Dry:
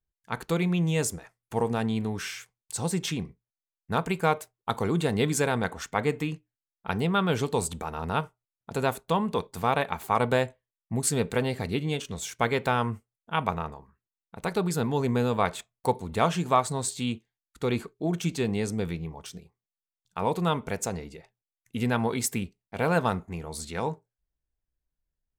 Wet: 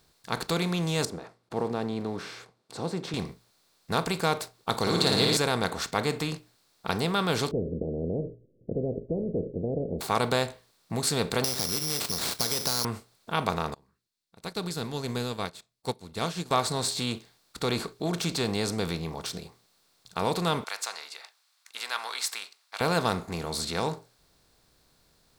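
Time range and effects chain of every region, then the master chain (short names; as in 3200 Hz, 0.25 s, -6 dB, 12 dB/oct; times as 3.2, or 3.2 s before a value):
1.05–3.14 block floating point 7-bit + band-pass 350 Hz, Q 0.84
4.81–5.37 bell 4300 Hz +14.5 dB 0.39 oct + flutter echo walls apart 9.6 m, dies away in 0.91 s
7.51–10.01 steep low-pass 520 Hz 96 dB/oct + spectral compressor 2:1
11.44–12.85 CVSD 32 kbps + careless resampling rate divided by 8×, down none, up zero stuff + compressor 3:1, threshold -26 dBFS
13.74–16.51 bell 910 Hz -8 dB 2.3 oct + upward expander 2.5:1, over -45 dBFS
20.64–22.81 HPF 1100 Hz 24 dB/oct + high shelf 9100 Hz -8 dB
whole clip: per-bin compression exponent 0.6; bell 4400 Hz +10 dB 0.59 oct; gain -5 dB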